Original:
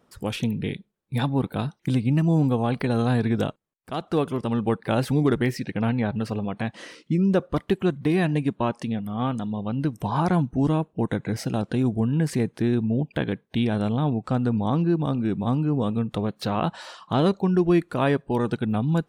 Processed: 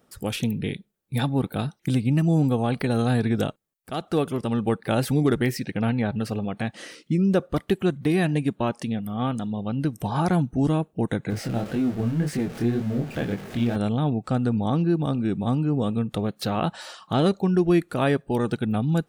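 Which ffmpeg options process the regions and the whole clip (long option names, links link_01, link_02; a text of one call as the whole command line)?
ffmpeg -i in.wav -filter_complex "[0:a]asettb=1/sr,asplit=3[link_01][link_02][link_03];[link_01]atrim=end=11.304[link_04];[link_02]atrim=start=11.3:end=13.76,asetpts=PTS-STARTPTS,afade=type=in:duration=0.004:curve=qsin,afade=type=out:start_time=2.456:duration=0.004:curve=qsin,aeval=exprs='val(0)+0.5*0.0355*sgn(val(0))':channel_layout=same,lowpass=frequency=2600:poles=1,flanger=delay=19.5:depth=6.2:speed=1.9[link_05];[link_03]atrim=start=13.756[link_06];[link_04][link_05]acrossfade=duration=0.004:curve1=hsin:curve2=qsin[link_07];[link_07][link_06]acrossfade=duration=0.004:curve1=qsin:curve2=hsin,highshelf=frequency=7700:gain=9.5,bandreject=frequency=1000:width=7.8" out.wav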